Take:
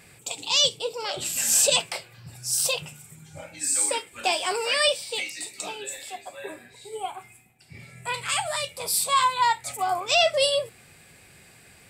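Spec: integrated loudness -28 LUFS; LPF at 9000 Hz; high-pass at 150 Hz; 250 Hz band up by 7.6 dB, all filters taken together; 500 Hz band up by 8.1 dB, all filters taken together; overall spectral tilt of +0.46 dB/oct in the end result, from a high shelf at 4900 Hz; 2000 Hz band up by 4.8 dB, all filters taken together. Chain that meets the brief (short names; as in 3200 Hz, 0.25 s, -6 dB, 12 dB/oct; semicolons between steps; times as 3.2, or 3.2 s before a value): HPF 150 Hz; LPF 9000 Hz; bell 250 Hz +8 dB; bell 500 Hz +8 dB; bell 2000 Hz +4.5 dB; high shelf 4900 Hz +6.5 dB; gain -8.5 dB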